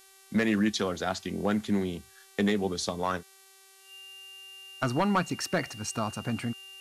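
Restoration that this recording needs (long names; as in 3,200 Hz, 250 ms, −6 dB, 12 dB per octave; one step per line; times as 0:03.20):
clipped peaks rebuilt −18 dBFS
hum removal 386.7 Hz, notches 30
notch filter 2,800 Hz, Q 30
downward expander −49 dBFS, range −21 dB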